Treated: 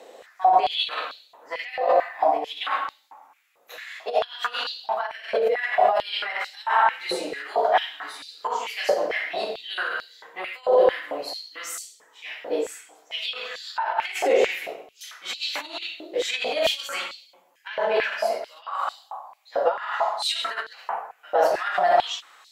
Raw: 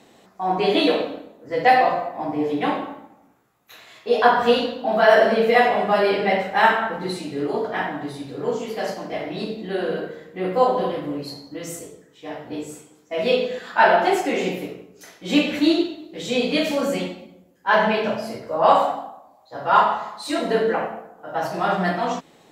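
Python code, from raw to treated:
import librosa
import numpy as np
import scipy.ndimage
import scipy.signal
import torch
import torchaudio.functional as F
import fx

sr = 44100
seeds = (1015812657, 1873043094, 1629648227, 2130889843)

y = fx.over_compress(x, sr, threshold_db=-24.0, ratio=-1.0)
y = fx.filter_held_highpass(y, sr, hz=4.5, low_hz=510.0, high_hz=4400.0)
y = F.gain(torch.from_numpy(y), -2.0).numpy()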